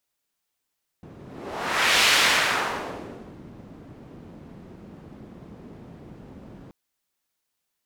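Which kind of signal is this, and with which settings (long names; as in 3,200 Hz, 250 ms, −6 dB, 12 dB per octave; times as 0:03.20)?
pass-by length 5.68 s, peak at 0:01.04, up 0.97 s, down 1.44 s, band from 210 Hz, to 2,800 Hz, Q 0.96, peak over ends 26 dB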